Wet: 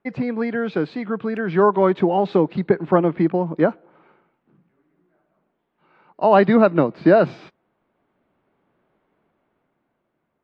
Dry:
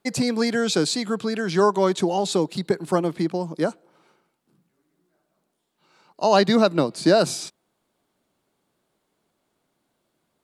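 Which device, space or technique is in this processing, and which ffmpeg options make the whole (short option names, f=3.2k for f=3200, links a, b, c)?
action camera in a waterproof case: -af "lowpass=f=2.4k:w=0.5412,lowpass=f=2.4k:w=1.3066,dynaudnorm=f=240:g=13:m=15dB,volume=-1dB" -ar 32000 -c:a aac -b:a 48k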